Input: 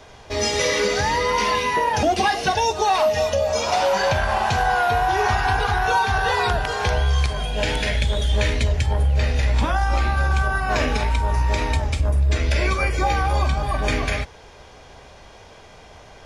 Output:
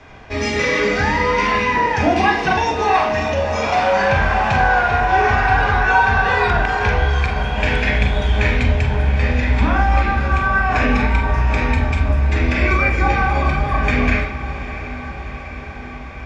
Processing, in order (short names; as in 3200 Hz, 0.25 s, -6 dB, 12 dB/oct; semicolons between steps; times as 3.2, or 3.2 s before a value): LPF 2600 Hz 12 dB/oct; diffused feedback echo 0.683 s, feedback 70%, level -13 dB; reverb RT60 0.65 s, pre-delay 31 ms, DRR 2.5 dB; gain +7 dB